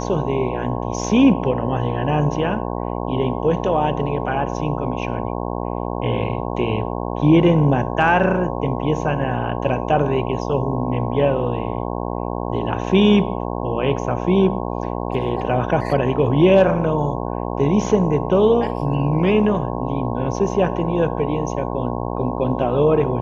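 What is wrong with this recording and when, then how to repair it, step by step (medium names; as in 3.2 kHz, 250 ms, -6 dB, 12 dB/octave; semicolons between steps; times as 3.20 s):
buzz 60 Hz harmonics 18 -25 dBFS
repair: de-hum 60 Hz, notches 18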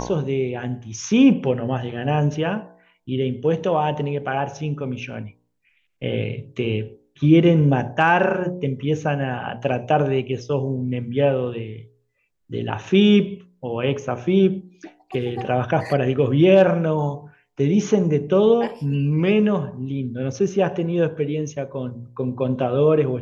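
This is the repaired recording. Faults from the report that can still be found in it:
nothing left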